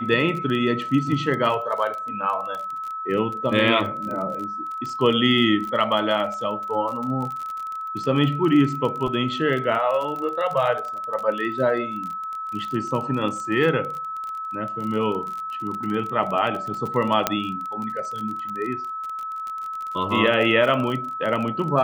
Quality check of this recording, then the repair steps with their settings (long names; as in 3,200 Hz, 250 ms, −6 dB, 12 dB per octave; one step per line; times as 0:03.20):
surface crackle 31 per second −28 dBFS
whistle 1,300 Hz −28 dBFS
0:17.27: click −3 dBFS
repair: click removal
notch filter 1,300 Hz, Q 30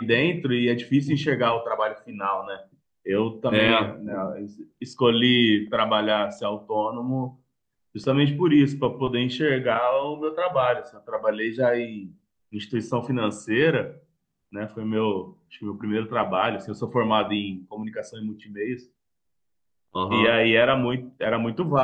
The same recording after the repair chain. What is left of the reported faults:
none of them is left